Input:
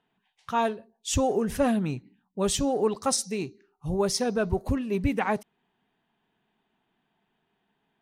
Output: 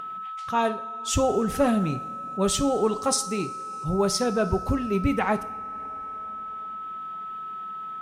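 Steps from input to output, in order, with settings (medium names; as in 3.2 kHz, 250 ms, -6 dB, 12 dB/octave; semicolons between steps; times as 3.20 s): two-slope reverb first 0.43 s, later 2.6 s, from -14 dB, DRR 9.5 dB; upward compressor, threshold -40 dBFS; whistle 1.3 kHz -34 dBFS; trim +1.5 dB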